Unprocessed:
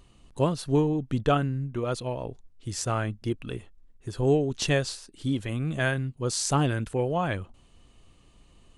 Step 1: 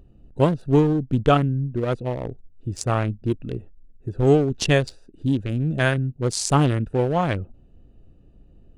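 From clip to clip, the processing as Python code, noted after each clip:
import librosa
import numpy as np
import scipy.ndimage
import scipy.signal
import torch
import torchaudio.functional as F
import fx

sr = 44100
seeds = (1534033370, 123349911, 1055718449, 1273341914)

y = fx.wiener(x, sr, points=41)
y = y * 10.0 ** (6.5 / 20.0)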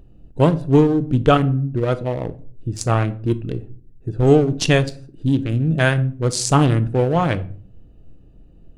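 y = fx.room_shoebox(x, sr, seeds[0], volume_m3=450.0, walls='furnished', distance_m=0.55)
y = y * 10.0 ** (3.0 / 20.0)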